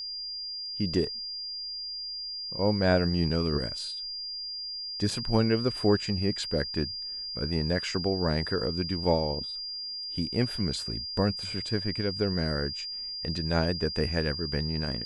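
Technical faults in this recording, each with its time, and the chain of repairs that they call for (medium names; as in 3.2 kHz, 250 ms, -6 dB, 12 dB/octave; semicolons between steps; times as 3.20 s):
whine 4.8 kHz -34 dBFS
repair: band-stop 4.8 kHz, Q 30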